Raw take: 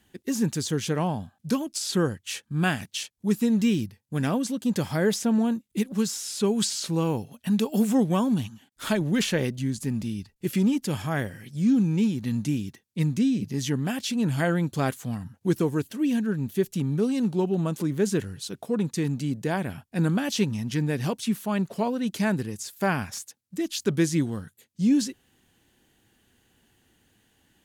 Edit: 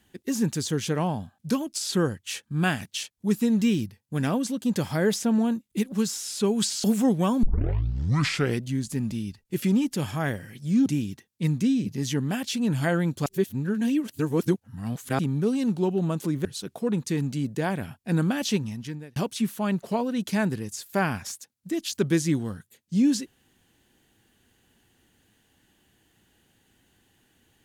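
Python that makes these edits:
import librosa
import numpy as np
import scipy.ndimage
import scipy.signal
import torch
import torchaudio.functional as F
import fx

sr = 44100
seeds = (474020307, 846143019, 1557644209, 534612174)

y = fx.edit(x, sr, fx.cut(start_s=6.84, length_s=0.91),
    fx.tape_start(start_s=8.34, length_s=1.19),
    fx.cut(start_s=11.77, length_s=0.65),
    fx.reverse_span(start_s=14.82, length_s=1.93),
    fx.cut(start_s=18.01, length_s=0.31),
    fx.fade_out_span(start_s=20.35, length_s=0.68), tone=tone)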